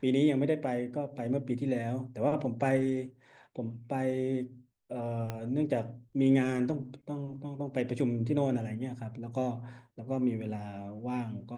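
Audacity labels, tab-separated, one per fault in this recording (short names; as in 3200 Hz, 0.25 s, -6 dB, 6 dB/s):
5.300000	5.300000	pop -21 dBFS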